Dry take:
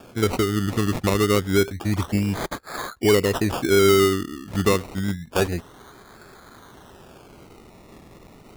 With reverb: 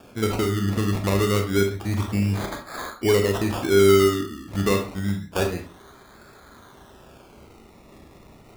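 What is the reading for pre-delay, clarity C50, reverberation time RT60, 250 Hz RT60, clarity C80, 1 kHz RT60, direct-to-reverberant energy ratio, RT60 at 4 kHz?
28 ms, 7.5 dB, 0.40 s, 0.35 s, 13.5 dB, 0.40 s, 3.0 dB, 0.25 s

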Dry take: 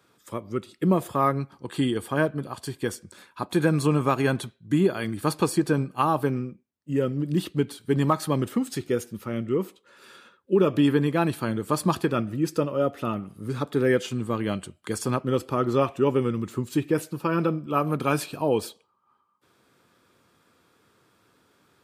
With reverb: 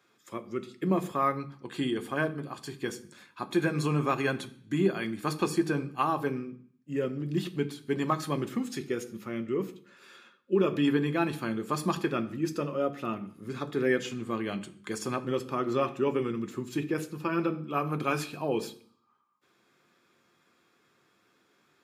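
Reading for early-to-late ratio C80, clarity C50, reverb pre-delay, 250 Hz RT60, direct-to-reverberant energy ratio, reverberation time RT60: 20.5 dB, 17.5 dB, 3 ms, 0.65 s, 8.0 dB, 0.55 s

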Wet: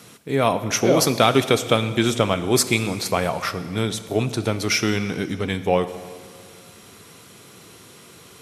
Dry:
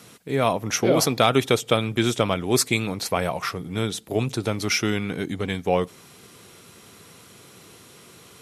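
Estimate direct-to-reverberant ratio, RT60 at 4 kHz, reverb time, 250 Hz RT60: 11.5 dB, 1.9 s, 2.0 s, 2.0 s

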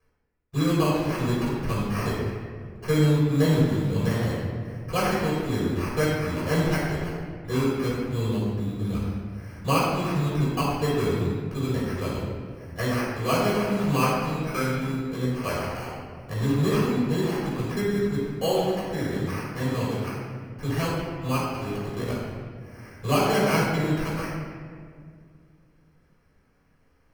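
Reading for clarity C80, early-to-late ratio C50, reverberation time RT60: 1.0 dB, -1.0 dB, 2.0 s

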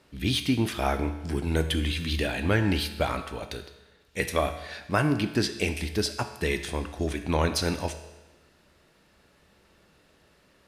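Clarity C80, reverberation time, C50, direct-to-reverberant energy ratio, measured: 12.0 dB, 1.1 s, 10.5 dB, 7.5 dB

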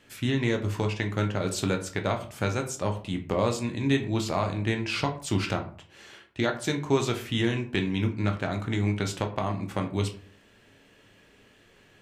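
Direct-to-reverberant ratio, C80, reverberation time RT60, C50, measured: 3.5 dB, 15.5 dB, 0.45 s, 11.5 dB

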